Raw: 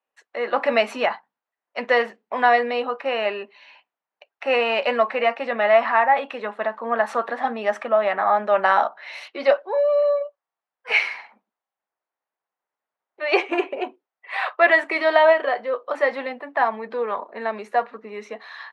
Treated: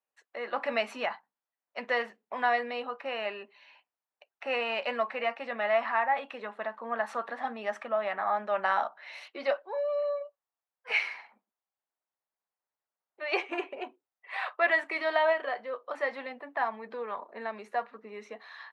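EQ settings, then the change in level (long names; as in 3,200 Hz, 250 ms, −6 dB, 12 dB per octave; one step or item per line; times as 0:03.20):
dynamic equaliser 410 Hz, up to −4 dB, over −31 dBFS, Q 0.82
−8.5 dB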